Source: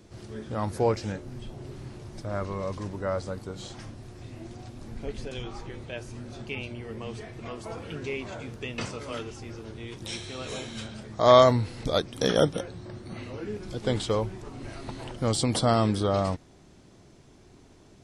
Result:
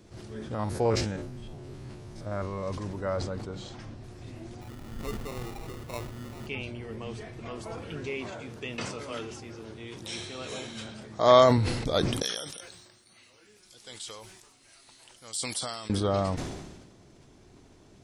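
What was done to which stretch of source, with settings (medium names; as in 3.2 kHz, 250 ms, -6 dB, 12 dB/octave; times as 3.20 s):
0.54–2.67 s: spectrogram pixelated in time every 50 ms
3.17–4.04 s: distance through air 61 m
4.61–6.47 s: sample-rate reducer 1.6 kHz
8.09–11.58 s: high-pass 140 Hz 6 dB/octave
12.22–15.90 s: pre-emphasis filter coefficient 0.97
whole clip: decay stretcher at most 43 dB/s; trim -1.5 dB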